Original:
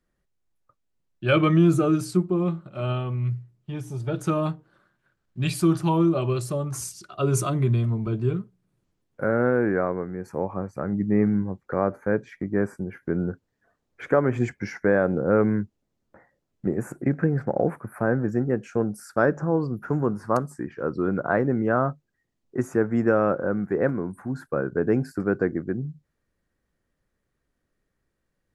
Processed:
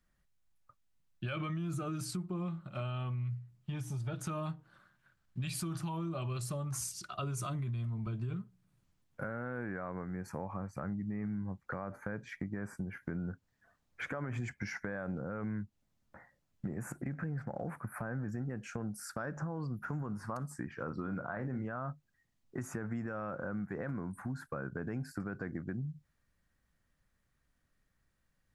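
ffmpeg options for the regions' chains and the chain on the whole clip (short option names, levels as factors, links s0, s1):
-filter_complex "[0:a]asettb=1/sr,asplit=3[s0][s1][s2];[s0]atrim=end=20.774[s3];[s1]atrim=start=20.77:end=21.65,asetpts=PTS-STARTPTS,afade=t=in:d=0.004:c=qsin,afade=t=out:st=0.876:d=0.004:c=qsin,acrossover=split=3100[s4][s5];[s5]acompressor=threshold=0.001:ratio=4:attack=1:release=60[s6];[s4][s6]amix=inputs=2:normalize=0,asplit=2[s7][s8];[s8]adelay=38,volume=0.316[s9];[s7][s9]amix=inputs=2:normalize=0,atrim=end_sample=38808[s10];[s2]atrim=start=21.646[s11];[s3][s10]acrossfade=d=0.004:c1=hsin:c2=qsin[s12];[s12][s11]acrossfade=d=0.004:c1=qsin:c2=hsin,equalizer=f=400:t=o:w=1.2:g=-11,alimiter=limit=0.075:level=0:latency=1:release=44,acompressor=threshold=0.0141:ratio=4,volume=1.12"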